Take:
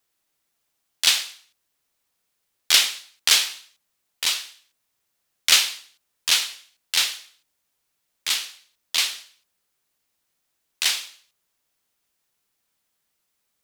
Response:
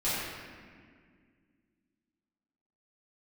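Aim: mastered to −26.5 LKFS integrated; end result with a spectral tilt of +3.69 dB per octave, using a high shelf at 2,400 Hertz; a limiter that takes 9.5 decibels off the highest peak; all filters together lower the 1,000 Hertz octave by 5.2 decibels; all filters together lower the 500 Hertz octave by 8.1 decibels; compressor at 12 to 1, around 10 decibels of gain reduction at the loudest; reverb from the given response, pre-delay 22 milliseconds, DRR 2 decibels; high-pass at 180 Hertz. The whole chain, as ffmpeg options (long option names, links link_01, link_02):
-filter_complex "[0:a]highpass=180,equalizer=frequency=500:width_type=o:gain=-8.5,equalizer=frequency=1000:width_type=o:gain=-6.5,highshelf=frequency=2400:gain=4,acompressor=threshold=-18dB:ratio=12,alimiter=limit=-11.5dB:level=0:latency=1,asplit=2[link_01][link_02];[1:a]atrim=start_sample=2205,adelay=22[link_03];[link_02][link_03]afir=irnorm=-1:irlink=0,volume=-12dB[link_04];[link_01][link_04]amix=inputs=2:normalize=0"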